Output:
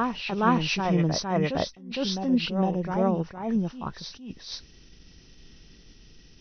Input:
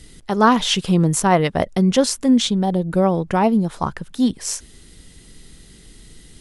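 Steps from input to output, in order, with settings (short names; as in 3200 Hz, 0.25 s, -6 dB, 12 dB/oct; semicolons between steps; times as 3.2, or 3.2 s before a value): nonlinear frequency compression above 1800 Hz 1.5:1; reverse echo 0.46 s -5 dB; attack slew limiter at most 100 dB/s; gain -7.5 dB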